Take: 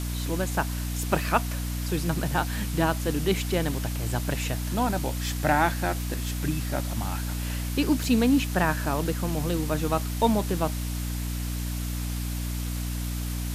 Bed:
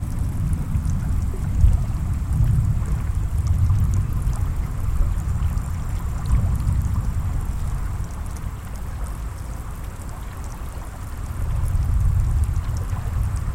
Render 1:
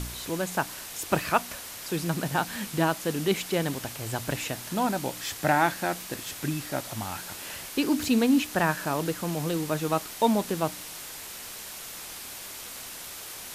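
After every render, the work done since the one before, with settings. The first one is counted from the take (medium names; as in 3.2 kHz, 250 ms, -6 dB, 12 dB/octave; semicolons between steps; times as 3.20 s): de-hum 60 Hz, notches 5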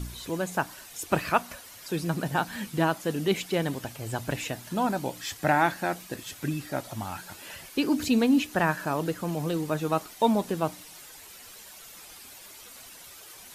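noise reduction 10 dB, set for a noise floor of -41 dBFS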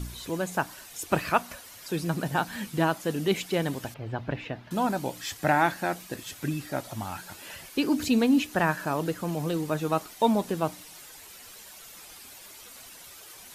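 3.94–4.71 s: distance through air 320 m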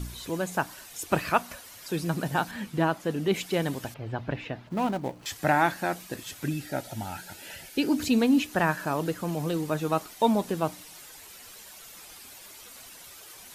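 2.51–3.34 s: treble shelf 4 kHz -8.5 dB; 4.67–5.26 s: median filter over 25 samples; 6.48–7.91 s: Butterworth band-stop 1.1 kHz, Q 3.6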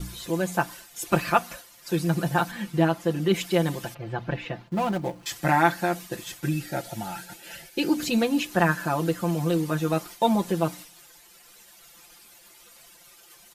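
expander -40 dBFS; comb 5.8 ms, depth 88%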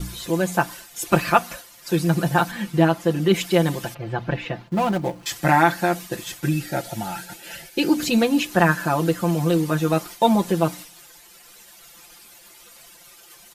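trim +4.5 dB; peak limiter -3 dBFS, peak gain reduction 2.5 dB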